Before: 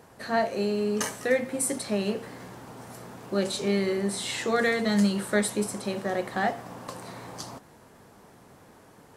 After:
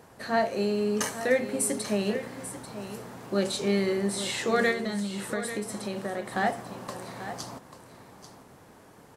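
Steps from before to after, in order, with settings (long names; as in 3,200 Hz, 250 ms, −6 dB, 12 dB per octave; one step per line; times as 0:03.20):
0:04.71–0:06.32: downward compressor, threshold −29 dBFS, peak gain reduction 10.5 dB
on a send: single-tap delay 840 ms −12 dB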